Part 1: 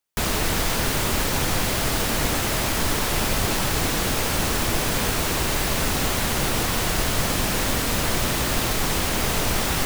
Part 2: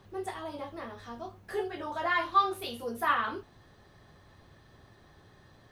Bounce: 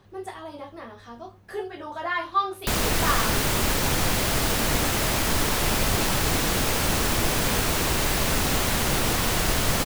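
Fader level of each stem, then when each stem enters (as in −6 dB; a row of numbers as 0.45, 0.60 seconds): −0.5, +1.0 decibels; 2.50, 0.00 seconds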